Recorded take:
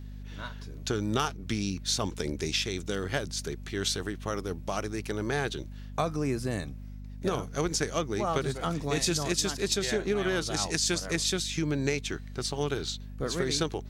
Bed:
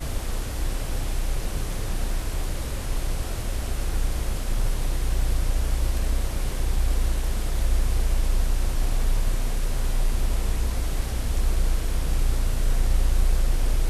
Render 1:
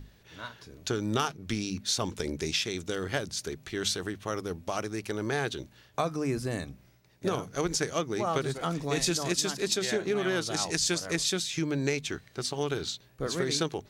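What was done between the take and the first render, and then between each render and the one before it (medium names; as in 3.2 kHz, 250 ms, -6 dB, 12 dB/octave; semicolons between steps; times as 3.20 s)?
hum notches 50/100/150/200/250 Hz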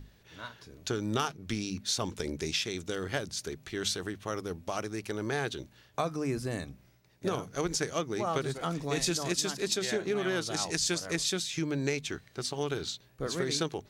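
trim -2 dB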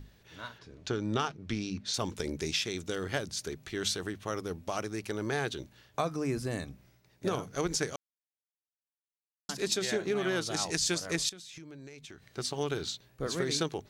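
0.58–1.94 s: distance through air 86 m; 7.96–9.49 s: mute; 11.29–12.28 s: compression 12:1, threshold -44 dBFS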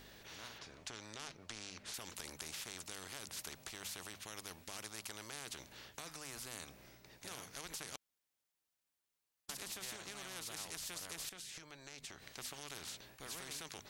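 peak limiter -23 dBFS, peak gain reduction 6.5 dB; spectrum-flattening compressor 4:1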